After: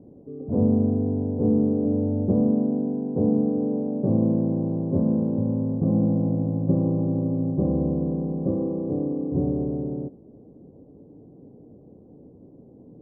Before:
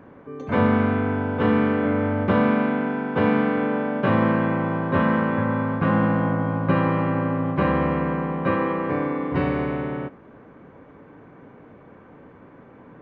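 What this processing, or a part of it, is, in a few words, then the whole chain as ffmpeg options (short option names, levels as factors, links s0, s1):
under water: -af "lowpass=f=440:w=0.5412,lowpass=f=440:w=1.3066,equalizer=f=760:t=o:w=0.56:g=8"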